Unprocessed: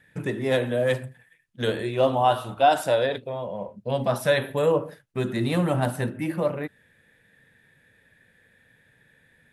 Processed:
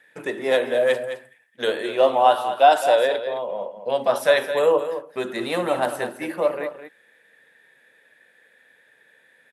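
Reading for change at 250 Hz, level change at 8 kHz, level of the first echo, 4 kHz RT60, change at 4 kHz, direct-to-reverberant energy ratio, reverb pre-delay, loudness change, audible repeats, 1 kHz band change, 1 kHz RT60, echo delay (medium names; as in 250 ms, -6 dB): -4.0 dB, +2.5 dB, -10.5 dB, no reverb, +3.5 dB, no reverb, no reverb, +3.5 dB, 1, +5.0 dB, no reverb, 213 ms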